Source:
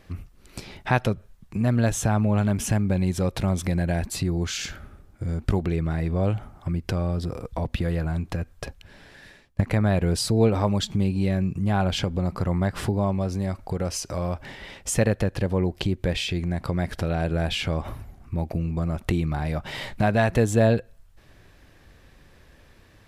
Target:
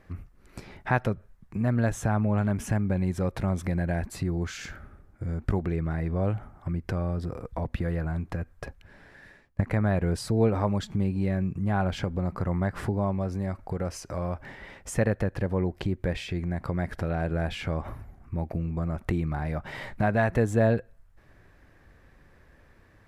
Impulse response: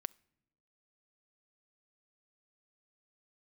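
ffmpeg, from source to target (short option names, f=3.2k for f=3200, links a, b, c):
-af "highshelf=f=2.4k:t=q:w=1.5:g=-6.5,volume=-3.5dB"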